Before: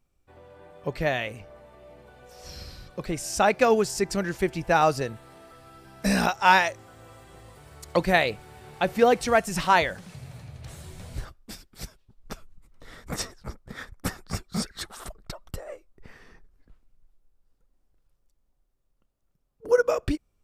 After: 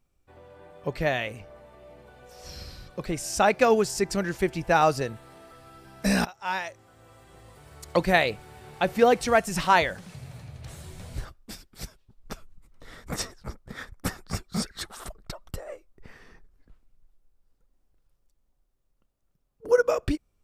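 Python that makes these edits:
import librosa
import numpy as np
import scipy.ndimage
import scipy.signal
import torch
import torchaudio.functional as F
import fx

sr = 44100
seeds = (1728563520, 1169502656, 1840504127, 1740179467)

y = fx.edit(x, sr, fx.fade_in_from(start_s=6.25, length_s=1.6, floor_db=-20.0), tone=tone)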